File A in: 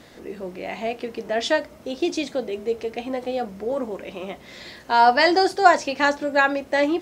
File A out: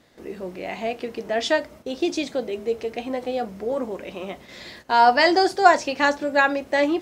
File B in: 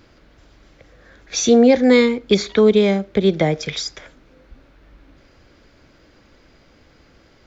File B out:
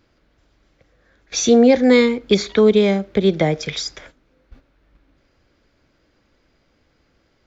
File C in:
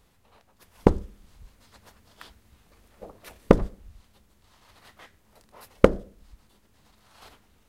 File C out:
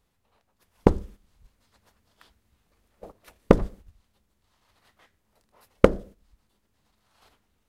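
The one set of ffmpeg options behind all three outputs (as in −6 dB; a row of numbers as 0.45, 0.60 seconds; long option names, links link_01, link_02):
-af "agate=range=-10dB:threshold=-43dB:ratio=16:detection=peak"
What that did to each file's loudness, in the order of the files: 0.0, 0.0, 0.0 LU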